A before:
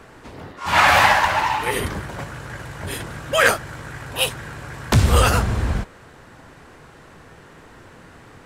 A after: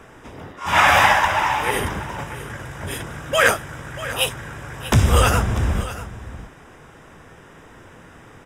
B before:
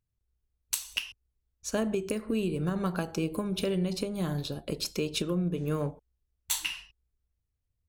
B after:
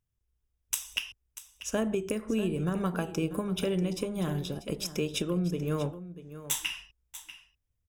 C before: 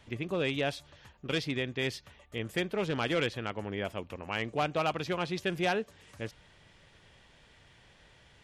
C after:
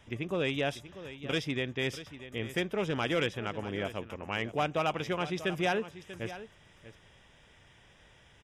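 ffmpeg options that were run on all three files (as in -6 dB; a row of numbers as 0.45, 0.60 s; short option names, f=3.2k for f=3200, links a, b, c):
-filter_complex "[0:a]asuperstop=centerf=4300:order=4:qfactor=4.9,asplit=2[a][b];[b]aecho=0:1:640:0.2[c];[a][c]amix=inputs=2:normalize=0"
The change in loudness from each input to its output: -0.5, 0.0, 0.0 LU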